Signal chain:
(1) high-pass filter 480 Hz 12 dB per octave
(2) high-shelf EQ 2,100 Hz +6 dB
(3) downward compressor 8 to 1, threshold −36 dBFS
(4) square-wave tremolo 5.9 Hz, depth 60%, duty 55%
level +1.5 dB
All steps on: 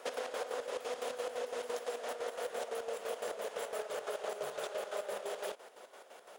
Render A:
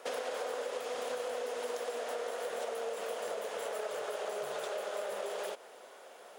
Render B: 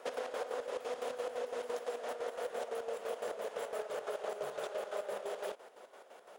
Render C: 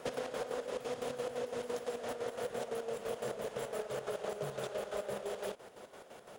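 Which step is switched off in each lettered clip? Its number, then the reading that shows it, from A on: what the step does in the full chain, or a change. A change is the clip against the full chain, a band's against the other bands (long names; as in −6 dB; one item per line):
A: 4, change in crest factor −2.0 dB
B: 2, 8 kHz band −4.5 dB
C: 1, 250 Hz band +10.0 dB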